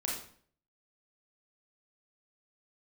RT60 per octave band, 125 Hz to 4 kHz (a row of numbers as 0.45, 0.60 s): 0.65, 0.60, 0.55, 0.50, 0.50, 0.45 s